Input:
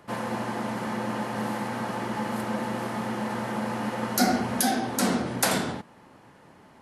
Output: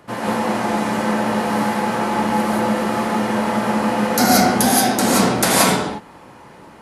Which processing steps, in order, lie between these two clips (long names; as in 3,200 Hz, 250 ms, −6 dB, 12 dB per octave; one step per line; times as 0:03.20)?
0:00.55–0:01.01: noise in a band 1,300–10,000 Hz −54 dBFS
reverb whose tail is shaped and stops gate 200 ms rising, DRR −5 dB
level +5 dB